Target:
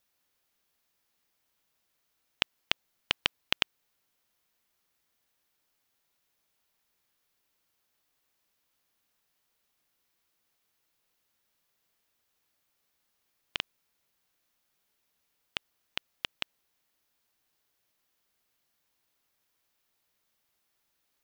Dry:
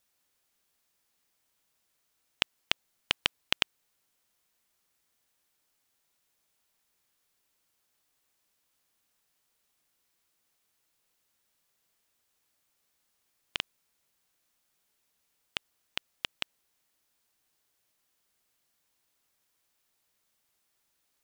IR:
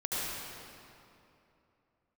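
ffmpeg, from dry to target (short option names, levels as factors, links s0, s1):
-af "equalizer=f=8400:w=1.3:g=-5"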